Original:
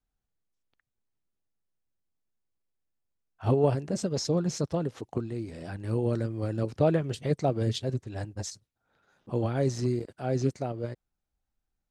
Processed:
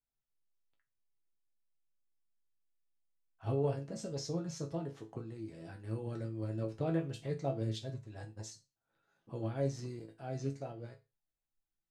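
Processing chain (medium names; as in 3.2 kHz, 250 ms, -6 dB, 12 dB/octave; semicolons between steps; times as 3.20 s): chord resonator A2 major, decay 0.26 s; trim +2.5 dB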